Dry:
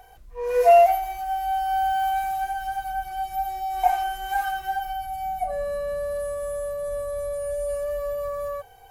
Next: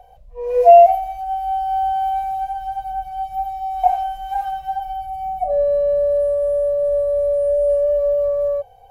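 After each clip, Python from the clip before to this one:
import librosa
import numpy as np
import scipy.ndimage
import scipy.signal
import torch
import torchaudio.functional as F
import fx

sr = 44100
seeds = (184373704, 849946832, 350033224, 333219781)

y = fx.curve_eq(x, sr, hz=(180.0, 350.0, 550.0, 1400.0, 2800.0, 9200.0), db=(0, -23, 10, -15, -7, -14))
y = y * 10.0 ** (2.5 / 20.0)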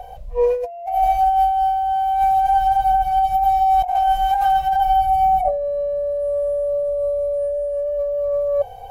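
y = fx.over_compress(x, sr, threshold_db=-25.0, ratio=-1.0)
y = y * 10.0 ** (5.5 / 20.0)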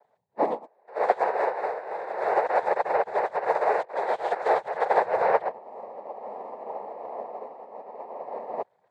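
y = fx.noise_vocoder(x, sr, seeds[0], bands=6)
y = fx.upward_expand(y, sr, threshold_db=-30.0, expansion=2.5)
y = y * 10.0 ** (-4.0 / 20.0)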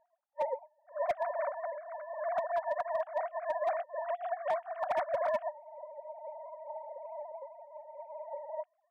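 y = fx.sine_speech(x, sr)
y = np.clip(y, -10.0 ** (-16.0 / 20.0), 10.0 ** (-16.0 / 20.0))
y = y * 10.0 ** (-8.5 / 20.0)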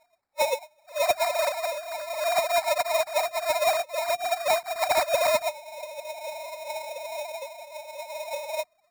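y = fx.sample_hold(x, sr, seeds[1], rate_hz=3100.0, jitter_pct=0)
y = y * 10.0 ** (8.5 / 20.0)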